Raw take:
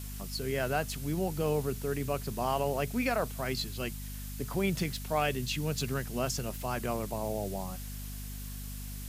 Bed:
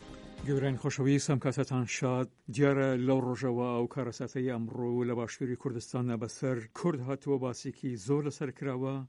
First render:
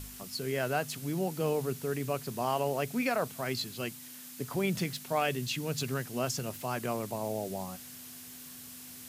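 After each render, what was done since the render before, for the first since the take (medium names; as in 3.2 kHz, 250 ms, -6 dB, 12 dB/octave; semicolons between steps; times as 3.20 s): de-hum 50 Hz, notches 4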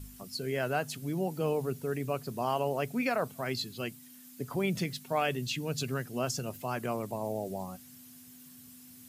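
noise reduction 10 dB, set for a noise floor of -48 dBFS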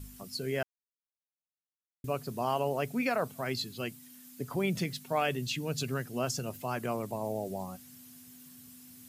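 0.63–2.04 s: mute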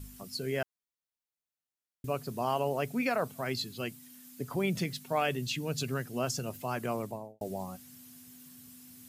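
7.00–7.41 s: studio fade out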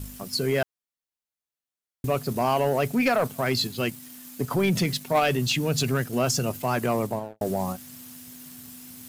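in parallel at -2 dB: level held to a coarse grid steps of 14 dB; on the sum: waveshaping leveller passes 2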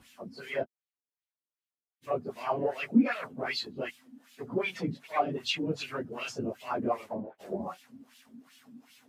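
phase randomisation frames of 50 ms; wah-wah 2.6 Hz 230–3200 Hz, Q 2.1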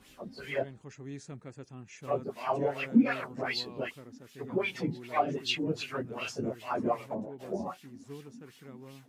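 add bed -15.5 dB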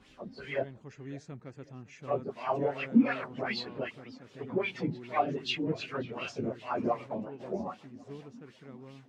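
distance through air 100 m; modulated delay 551 ms, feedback 33%, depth 206 cents, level -21 dB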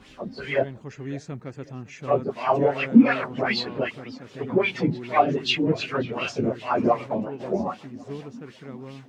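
trim +9.5 dB; peak limiter -3 dBFS, peak gain reduction 0.5 dB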